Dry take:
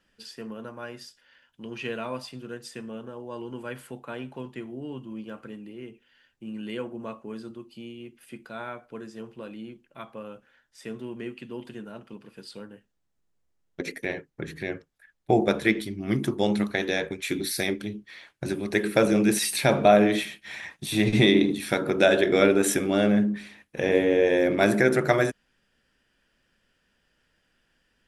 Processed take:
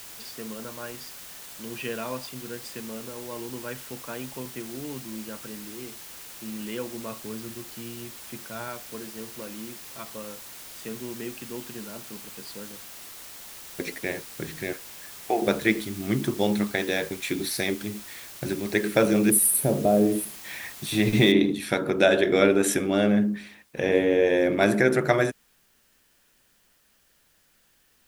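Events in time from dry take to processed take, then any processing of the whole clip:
0:05.06–0:05.80: Bessel low-pass filter 5,500 Hz
0:07.11–0:08.68: parametric band 100 Hz +9 dB
0:14.73–0:15.42: loudspeaker in its box 480–3,000 Hz, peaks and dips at 550 Hz −3 dB, 1,100 Hz +3 dB, 1,800 Hz +6 dB, 2,800 Hz +7 dB
0:19.30–0:20.37: drawn EQ curve 450 Hz 0 dB, 1,900 Hz −22 dB, 5,800 Hz −19 dB, 10,000 Hz +13 dB
0:21.32: noise floor change −43 dB −65 dB

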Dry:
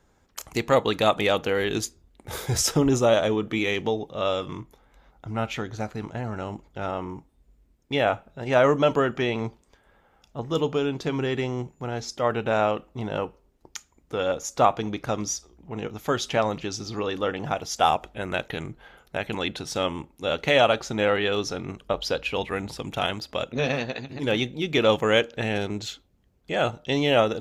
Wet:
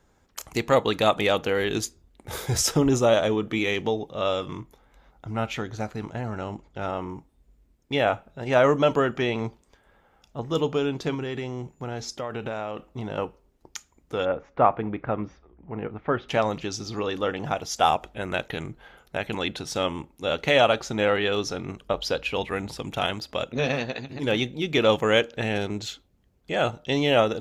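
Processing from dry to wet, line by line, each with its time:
0:06.36–0:06.79: low-pass filter 8,500 Hz
0:11.14–0:13.18: downward compressor, threshold −27 dBFS
0:14.25–0:16.29: low-pass filter 2,200 Hz 24 dB per octave

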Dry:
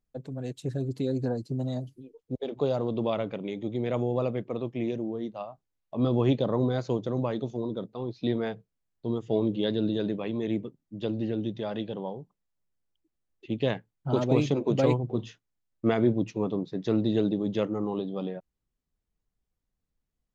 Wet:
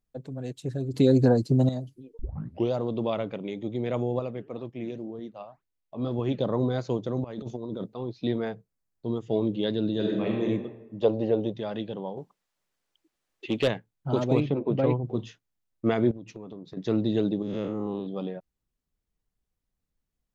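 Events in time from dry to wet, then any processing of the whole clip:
0:00.94–0:01.69: clip gain +9.5 dB
0:02.19: tape start 0.53 s
0:04.19–0:06.39: flanger 2 Hz, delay 0 ms, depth 7.8 ms, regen +89%
0:07.24–0:07.94: compressor whose output falls as the input rises −34 dBFS, ratio −0.5
0:08.45–0:09.06: parametric band 3,100 Hz −6 dB
0:09.93–0:10.45: thrown reverb, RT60 1.1 s, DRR −1 dB
0:11.01–0:11.54: flat-topped bell 690 Hz +12 dB
0:12.17–0:13.68: mid-hump overdrive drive 18 dB, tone 6,200 Hz, clips at −14 dBFS
0:14.40–0:15.05: high-frequency loss of the air 360 metres
0:16.11–0:16.77: downward compressor 16 to 1, threshold −36 dBFS
0:17.42–0:18.07: spectrum smeared in time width 149 ms

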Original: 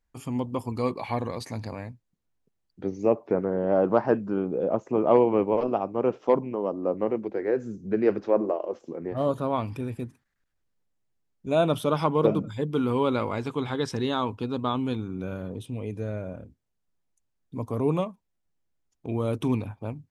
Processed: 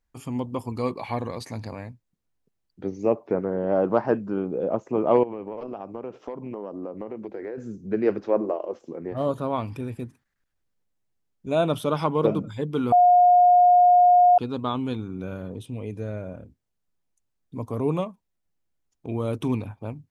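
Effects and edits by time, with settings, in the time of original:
0:05.23–0:07.58: downward compressor 16 to 1, threshold −29 dBFS
0:12.92–0:14.38: beep over 715 Hz −12 dBFS

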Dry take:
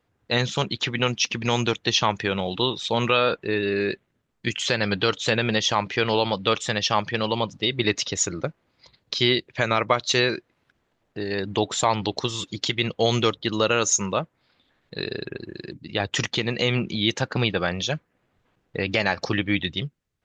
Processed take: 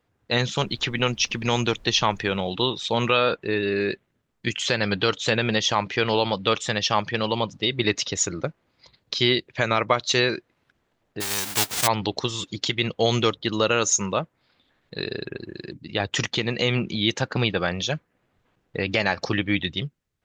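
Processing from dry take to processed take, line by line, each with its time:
0:00.60–0:02.37: background noise brown −48 dBFS
0:11.20–0:11.86: spectral envelope flattened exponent 0.1

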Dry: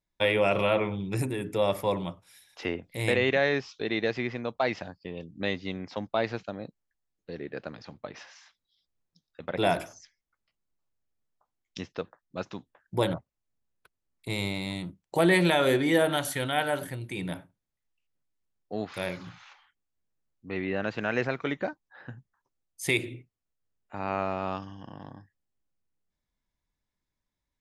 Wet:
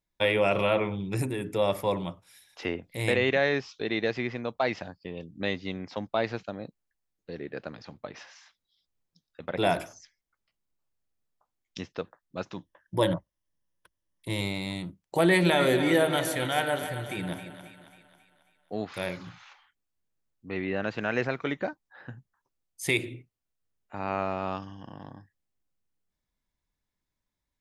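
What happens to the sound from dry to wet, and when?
0:12.56–0:14.41: EQ curve with evenly spaced ripples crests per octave 1.2, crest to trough 8 dB
0:15.26–0:18.81: echo with a time of its own for lows and highs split 700 Hz, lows 171 ms, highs 271 ms, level −10 dB

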